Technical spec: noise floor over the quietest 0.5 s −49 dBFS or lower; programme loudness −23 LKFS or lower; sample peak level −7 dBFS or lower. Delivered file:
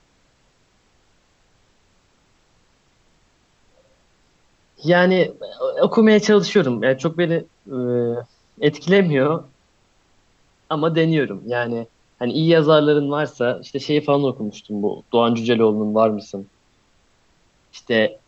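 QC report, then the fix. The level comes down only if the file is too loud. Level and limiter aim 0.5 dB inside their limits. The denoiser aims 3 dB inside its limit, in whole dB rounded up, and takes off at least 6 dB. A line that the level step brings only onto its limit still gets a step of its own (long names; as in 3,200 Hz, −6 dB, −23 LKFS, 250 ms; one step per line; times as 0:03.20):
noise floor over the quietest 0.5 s −60 dBFS: in spec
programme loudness −19.0 LKFS: out of spec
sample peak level −3.5 dBFS: out of spec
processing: level −4.5 dB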